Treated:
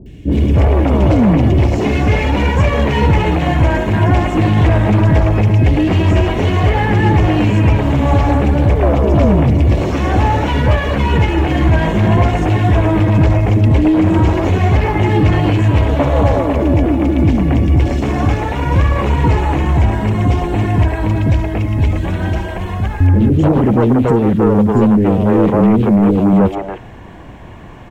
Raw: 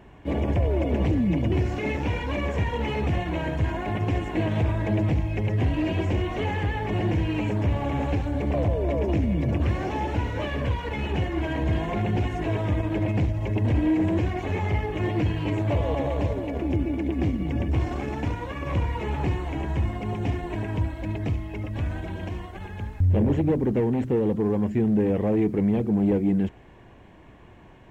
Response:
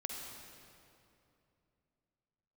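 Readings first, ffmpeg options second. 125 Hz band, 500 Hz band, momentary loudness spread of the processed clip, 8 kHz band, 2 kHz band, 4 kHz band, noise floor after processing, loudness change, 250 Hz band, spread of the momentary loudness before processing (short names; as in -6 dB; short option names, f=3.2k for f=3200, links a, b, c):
+13.5 dB, +11.5 dB, 5 LU, n/a, +12.5 dB, +12.5 dB, -28 dBFS, +12.5 dB, +12.0 dB, 7 LU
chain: -filter_complex "[0:a]aeval=exprs='0.251*sin(PI/2*2*val(0)/0.251)':c=same,acrossover=split=410|2500[a][b][c];[c]adelay=60[d];[b]adelay=290[e];[a][e][d]amix=inputs=3:normalize=0,volume=6dB"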